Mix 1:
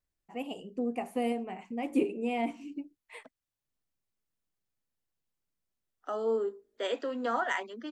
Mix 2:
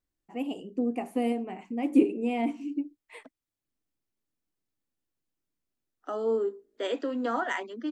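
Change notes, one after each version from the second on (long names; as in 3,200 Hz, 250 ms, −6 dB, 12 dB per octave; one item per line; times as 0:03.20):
master: add parametric band 300 Hz +9 dB 0.64 octaves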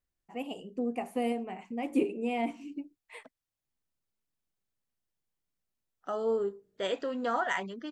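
second voice: remove Chebyshev high-pass filter 210 Hz, order 10
master: add parametric band 300 Hz −9 dB 0.64 octaves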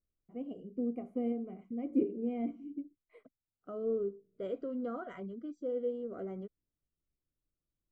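second voice: entry −2.40 s
master: add moving average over 50 samples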